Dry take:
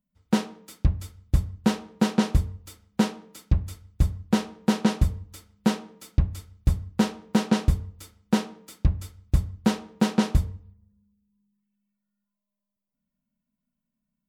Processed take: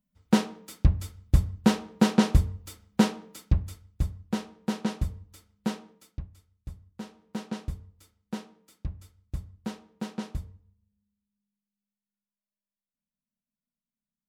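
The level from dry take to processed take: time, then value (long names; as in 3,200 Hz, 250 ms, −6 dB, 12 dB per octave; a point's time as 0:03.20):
0:03.26 +1 dB
0:04.16 −7.5 dB
0:05.90 −7.5 dB
0:06.31 −19 dB
0:06.93 −19 dB
0:07.39 −13 dB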